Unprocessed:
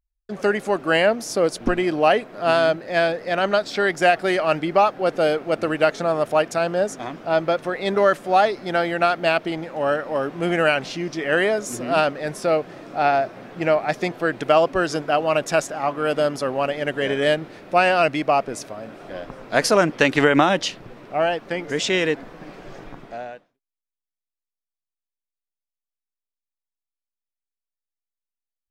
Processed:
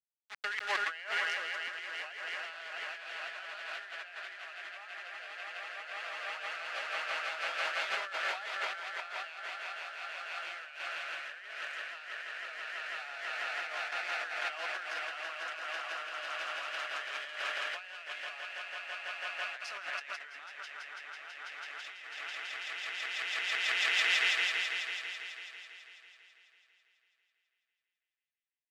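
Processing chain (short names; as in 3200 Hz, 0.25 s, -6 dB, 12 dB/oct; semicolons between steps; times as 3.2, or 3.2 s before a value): sample gate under -24.5 dBFS; ladder band-pass 2500 Hz, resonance 25%; on a send: swelling echo 0.165 s, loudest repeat 5, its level -6 dB; on the sum: negative-ratio compressor -43 dBFS, ratio -1; three-band expander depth 100%; gain +3.5 dB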